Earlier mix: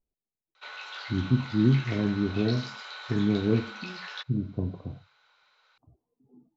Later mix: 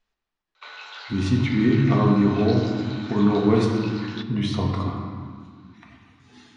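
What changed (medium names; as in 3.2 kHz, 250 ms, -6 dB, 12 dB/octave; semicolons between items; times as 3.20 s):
speech: remove Gaussian low-pass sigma 15 samples; reverb: on, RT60 1.9 s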